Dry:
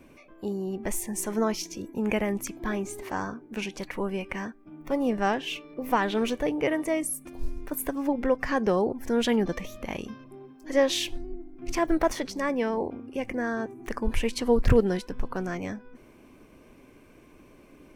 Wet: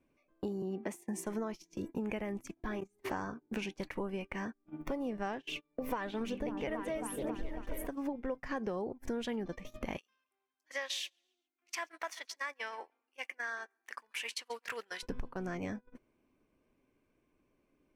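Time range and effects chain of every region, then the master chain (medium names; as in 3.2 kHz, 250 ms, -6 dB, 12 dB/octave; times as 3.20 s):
0.62–1.26 s: steep high-pass 150 Hz + treble shelf 4.6 kHz -5 dB
2.51–3.04 s: hum notches 50/100/150/200/250/300/350/400 Hz + level held to a coarse grid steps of 17 dB
5.48–7.87 s: delay with an opening low-pass 273 ms, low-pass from 200 Hz, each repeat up 2 oct, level -3 dB + phaser 1.1 Hz, delay 2.1 ms, feedback 35% + gate -42 dBFS, range -8 dB
9.98–15.03 s: high-pass 1.5 kHz + feedback delay 138 ms, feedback 36%, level -19 dB
whole clip: compression 8:1, threshold -39 dBFS; treble shelf 5.8 kHz -4.5 dB; gate -44 dBFS, range -26 dB; trim +4.5 dB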